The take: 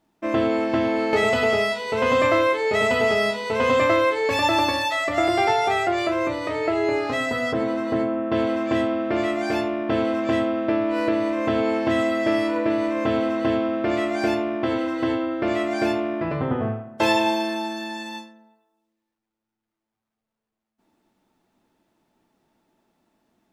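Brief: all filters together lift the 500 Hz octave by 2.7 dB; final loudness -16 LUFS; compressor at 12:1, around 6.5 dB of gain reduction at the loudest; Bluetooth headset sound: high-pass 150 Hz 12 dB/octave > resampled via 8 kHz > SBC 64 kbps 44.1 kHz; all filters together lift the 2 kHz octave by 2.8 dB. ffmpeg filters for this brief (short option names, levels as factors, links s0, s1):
-af "equalizer=f=500:t=o:g=3.5,equalizer=f=2000:t=o:g=3,acompressor=threshold=0.112:ratio=12,highpass=150,aresample=8000,aresample=44100,volume=2.51" -ar 44100 -c:a sbc -b:a 64k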